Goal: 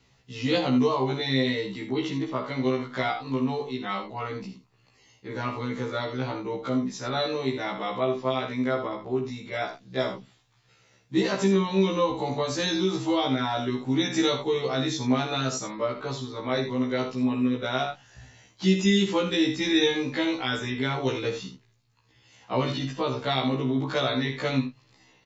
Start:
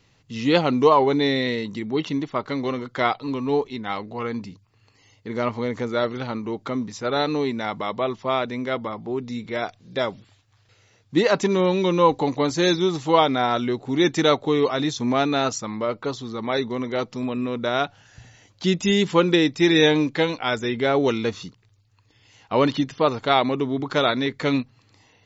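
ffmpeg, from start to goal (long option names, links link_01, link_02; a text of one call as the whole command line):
ffmpeg -i in.wav -filter_complex "[0:a]aecho=1:1:52|80:0.335|0.282,acrossover=split=260|3000[link_01][link_02][link_03];[link_02]acompressor=threshold=-22dB:ratio=6[link_04];[link_01][link_04][link_03]amix=inputs=3:normalize=0,afftfilt=real='re*1.73*eq(mod(b,3),0)':imag='im*1.73*eq(mod(b,3),0)':win_size=2048:overlap=0.75" out.wav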